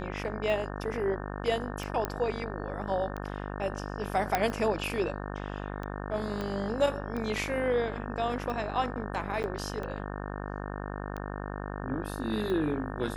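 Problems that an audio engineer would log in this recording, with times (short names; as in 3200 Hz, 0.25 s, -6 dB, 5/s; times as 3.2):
buzz 50 Hz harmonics 36 -37 dBFS
tick 45 rpm
2.05 pop -15 dBFS
4.35 pop -11 dBFS
6.41 pop -21 dBFS
9.43–9.44 gap 9.2 ms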